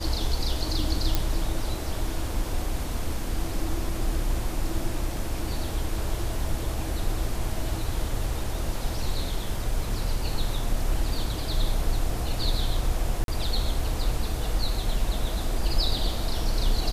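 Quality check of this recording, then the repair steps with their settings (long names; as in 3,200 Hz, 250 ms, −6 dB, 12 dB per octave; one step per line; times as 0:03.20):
0:01.15: click
0:13.24–0:13.28: drop-out 42 ms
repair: click removal
repair the gap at 0:13.24, 42 ms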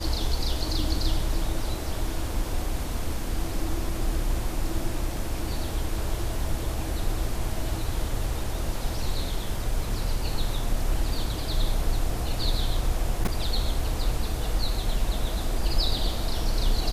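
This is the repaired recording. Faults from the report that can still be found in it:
none of them is left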